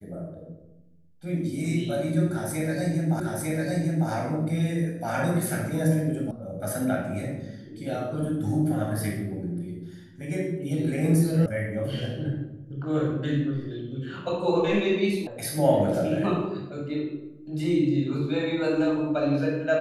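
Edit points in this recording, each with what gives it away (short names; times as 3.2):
3.2 repeat of the last 0.9 s
6.31 sound cut off
11.46 sound cut off
15.27 sound cut off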